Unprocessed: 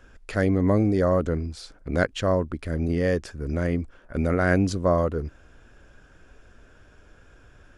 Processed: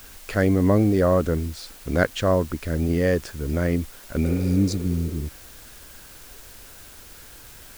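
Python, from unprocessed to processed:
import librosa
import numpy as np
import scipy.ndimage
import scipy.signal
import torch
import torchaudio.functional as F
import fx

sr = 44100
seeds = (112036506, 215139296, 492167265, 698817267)

p1 = fx.spec_repair(x, sr, seeds[0], start_s=4.28, length_s=0.92, low_hz=330.0, high_hz=3500.0, source='both')
p2 = fx.quant_dither(p1, sr, seeds[1], bits=6, dither='triangular')
y = p1 + F.gain(torch.from_numpy(p2), -10.0).numpy()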